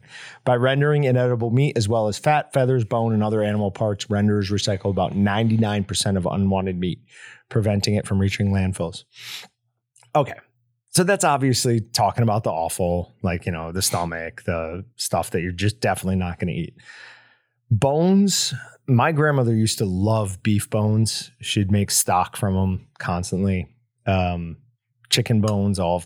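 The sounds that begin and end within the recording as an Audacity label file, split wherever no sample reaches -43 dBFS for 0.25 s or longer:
9.960000	10.400000	sound
10.920000	17.240000	sound
17.710000	23.660000	sound
24.060000	24.560000	sound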